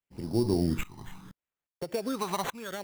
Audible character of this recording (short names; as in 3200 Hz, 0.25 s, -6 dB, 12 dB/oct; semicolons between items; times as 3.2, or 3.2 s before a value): tremolo saw up 1.2 Hz, depth 90%; phasing stages 12, 0.73 Hz, lowest notch 470–1900 Hz; aliases and images of a low sample rate 5000 Hz, jitter 0%